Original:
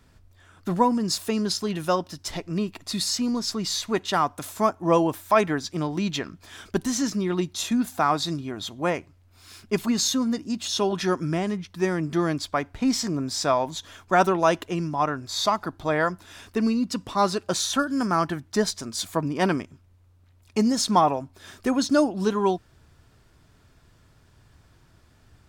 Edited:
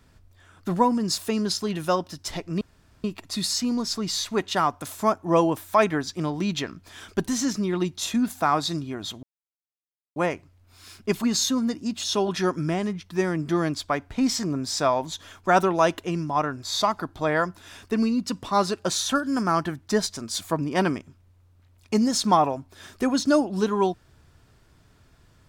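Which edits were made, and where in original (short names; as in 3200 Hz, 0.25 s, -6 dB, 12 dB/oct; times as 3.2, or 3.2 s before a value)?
2.61 insert room tone 0.43 s
8.8 insert silence 0.93 s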